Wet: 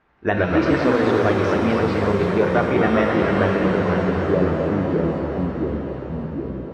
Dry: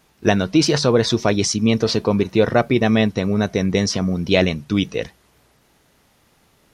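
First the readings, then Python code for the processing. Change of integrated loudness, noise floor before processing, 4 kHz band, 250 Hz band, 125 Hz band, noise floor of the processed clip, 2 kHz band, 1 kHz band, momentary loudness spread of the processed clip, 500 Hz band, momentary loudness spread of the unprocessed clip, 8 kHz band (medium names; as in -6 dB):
-1.5 dB, -59 dBFS, -12.0 dB, -1.0 dB, -1.0 dB, -31 dBFS, +1.0 dB, +3.5 dB, 9 LU, +1.0 dB, 5 LU, under -20 dB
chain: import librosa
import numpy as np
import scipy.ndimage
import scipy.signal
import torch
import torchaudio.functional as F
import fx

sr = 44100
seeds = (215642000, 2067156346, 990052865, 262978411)

p1 = fx.peak_eq(x, sr, hz=150.0, db=-6.0, octaves=0.78)
p2 = fx.filter_sweep_lowpass(p1, sr, from_hz=1700.0, to_hz=250.0, start_s=3.31, end_s=4.75, q=1.6)
p3 = fx.echo_pitch(p2, sr, ms=83, semitones=-2, count=3, db_per_echo=-3.0)
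p4 = p3 + fx.echo_wet_bandpass(p3, sr, ms=259, feedback_pct=76, hz=1000.0, wet_db=-6.5, dry=0)
p5 = fx.rev_shimmer(p4, sr, seeds[0], rt60_s=2.1, semitones=7, shimmer_db=-8, drr_db=3.0)
y = p5 * librosa.db_to_amplitude(-5.0)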